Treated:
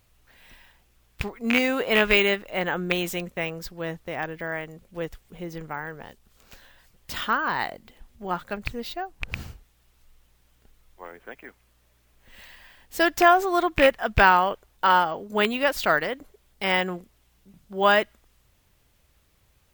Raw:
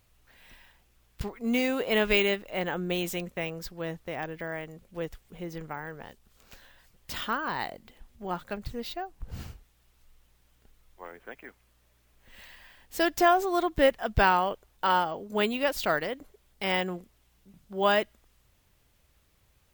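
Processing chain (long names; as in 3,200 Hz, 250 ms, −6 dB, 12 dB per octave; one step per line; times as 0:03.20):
loose part that buzzes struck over −30 dBFS, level −14 dBFS
dynamic equaliser 1,500 Hz, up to +5 dB, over −40 dBFS, Q 0.86
level +2.5 dB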